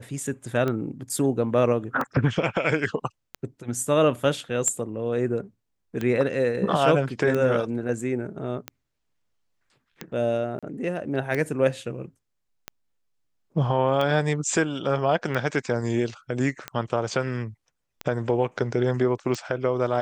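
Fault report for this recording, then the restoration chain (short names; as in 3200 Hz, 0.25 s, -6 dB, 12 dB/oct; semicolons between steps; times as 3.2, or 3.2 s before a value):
tick 45 rpm -15 dBFS
10.59–10.63 gap 36 ms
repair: de-click; interpolate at 10.59, 36 ms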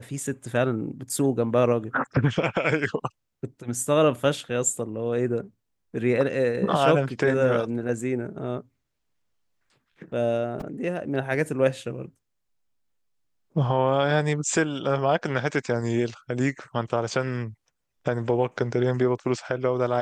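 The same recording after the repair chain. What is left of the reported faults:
none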